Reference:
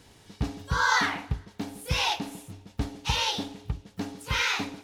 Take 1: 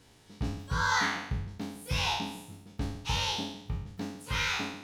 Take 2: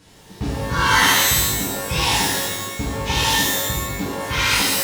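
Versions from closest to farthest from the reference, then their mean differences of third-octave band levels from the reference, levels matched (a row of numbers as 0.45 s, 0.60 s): 1, 2; 3.5 dB, 11.0 dB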